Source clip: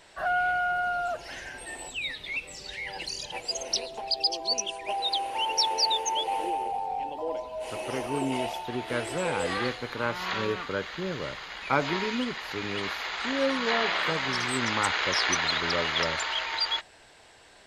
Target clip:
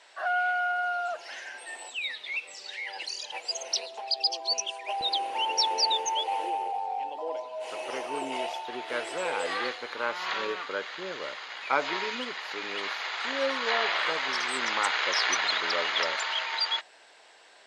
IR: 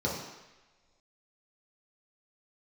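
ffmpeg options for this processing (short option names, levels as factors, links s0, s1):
-af "asetnsamples=n=441:p=0,asendcmd='5.01 highpass f 240;6.06 highpass f 460',highpass=610,lowpass=7800"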